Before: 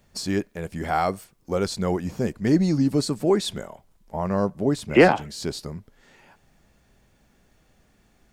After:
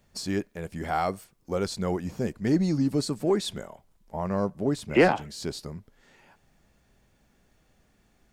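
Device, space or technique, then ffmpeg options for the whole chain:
parallel distortion: -filter_complex "[0:a]asplit=2[s0][s1];[s1]asoftclip=type=hard:threshold=0.158,volume=0.224[s2];[s0][s2]amix=inputs=2:normalize=0,volume=0.531"

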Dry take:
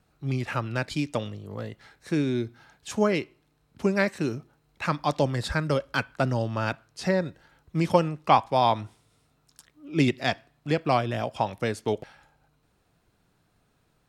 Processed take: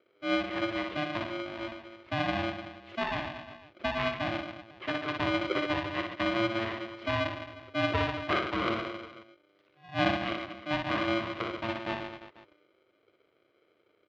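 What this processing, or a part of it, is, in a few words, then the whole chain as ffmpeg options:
ring modulator pedal into a guitar cabinet: -af "bass=f=250:g=12,treble=f=4000:g=-11,aecho=1:1:60|135|228.8|345.9|492.4:0.631|0.398|0.251|0.158|0.1,aeval=exprs='val(0)*sgn(sin(2*PI*450*n/s))':c=same,highpass=100,equalizer=f=100:t=q:w=4:g=4,equalizer=f=170:t=q:w=4:g=-9,equalizer=f=260:t=q:w=4:g=-10,equalizer=f=570:t=q:w=4:g=-6,equalizer=f=830:t=q:w=4:g=-5,equalizer=f=1400:t=q:w=4:g=-5,lowpass=f=3500:w=0.5412,lowpass=f=3500:w=1.3066,volume=0.376"

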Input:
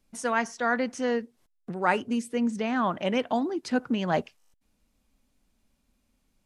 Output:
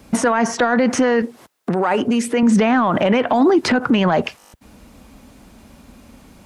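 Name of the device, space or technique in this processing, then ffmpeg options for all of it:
mastering chain: -filter_complex "[0:a]highpass=57,equalizer=f=1100:t=o:w=2.2:g=3.5,acrossover=split=890|3100[s0][s1][s2];[s0]acompressor=threshold=0.0224:ratio=4[s3];[s1]acompressor=threshold=0.02:ratio=4[s4];[s2]acompressor=threshold=0.00282:ratio=4[s5];[s3][s4][s5]amix=inputs=3:normalize=0,acompressor=threshold=0.0316:ratio=6,asoftclip=type=tanh:threshold=0.0841,tiltshelf=f=1300:g=3.5,alimiter=level_in=47.3:limit=0.891:release=50:level=0:latency=1,asettb=1/sr,asplit=3[s6][s7][s8];[s6]atrim=end=1.224[s9];[s7]atrim=start=1.22:end=2.43,asetpts=PTS-STARTPTS,afade=t=in:d=0.004:c=qsin,afade=t=out:st=1.206:d=0.004:c=qsin,highpass=f=260:p=1[s10];[s8]atrim=start=2.426[s11];[s9][s10]acrossfade=d=0.004:c1=hsin:c2=qsin[s12];[s12][s11]acrossfade=d=0.004:c1=qsin:c2=hsin,volume=0.447"

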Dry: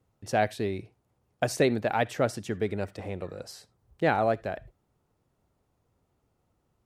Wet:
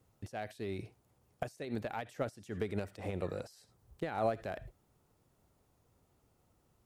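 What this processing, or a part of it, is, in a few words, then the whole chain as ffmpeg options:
de-esser from a sidechain: -filter_complex "[0:a]highshelf=f=5300:g=7,asplit=2[s0][s1];[s1]highpass=6400,apad=whole_len=302428[s2];[s0][s2]sidechaincompress=threshold=0.00112:ratio=12:attack=0.89:release=85,volume=1.12"

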